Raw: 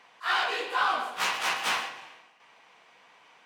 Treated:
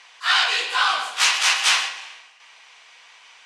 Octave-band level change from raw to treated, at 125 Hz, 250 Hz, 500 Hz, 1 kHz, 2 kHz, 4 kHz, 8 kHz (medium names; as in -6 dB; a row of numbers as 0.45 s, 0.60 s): under -10 dB, no reading, -1.5 dB, +4.0 dB, +8.5 dB, +13.0 dB, +15.5 dB